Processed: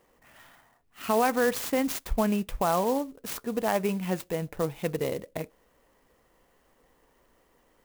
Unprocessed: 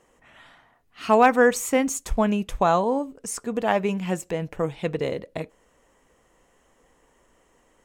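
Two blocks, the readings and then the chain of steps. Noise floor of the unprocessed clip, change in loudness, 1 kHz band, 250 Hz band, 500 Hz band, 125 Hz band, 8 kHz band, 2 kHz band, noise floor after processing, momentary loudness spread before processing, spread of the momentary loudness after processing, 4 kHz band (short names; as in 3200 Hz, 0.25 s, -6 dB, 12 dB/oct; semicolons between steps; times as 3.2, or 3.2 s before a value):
-63 dBFS, -5.5 dB, -6.5 dB, -4.0 dB, -5.5 dB, -3.5 dB, -6.0 dB, -7.0 dB, -66 dBFS, 14 LU, 10 LU, -2.0 dB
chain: limiter -12 dBFS, peak gain reduction 6 dB; clock jitter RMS 0.04 ms; gain -3 dB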